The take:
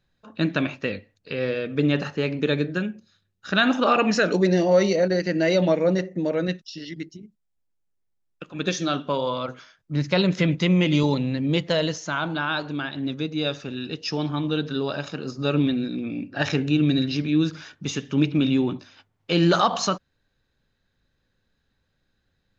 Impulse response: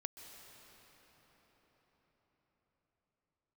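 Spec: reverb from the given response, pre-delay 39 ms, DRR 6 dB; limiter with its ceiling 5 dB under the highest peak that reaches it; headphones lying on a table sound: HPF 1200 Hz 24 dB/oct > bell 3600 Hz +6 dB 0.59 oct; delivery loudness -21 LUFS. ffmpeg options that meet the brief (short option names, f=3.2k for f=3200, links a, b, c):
-filter_complex "[0:a]alimiter=limit=-12dB:level=0:latency=1,asplit=2[a][b];[1:a]atrim=start_sample=2205,adelay=39[c];[b][c]afir=irnorm=-1:irlink=0,volume=-3.5dB[d];[a][d]amix=inputs=2:normalize=0,highpass=f=1.2k:w=0.5412,highpass=f=1.2k:w=1.3066,equalizer=f=3.6k:t=o:w=0.59:g=6,volume=8dB"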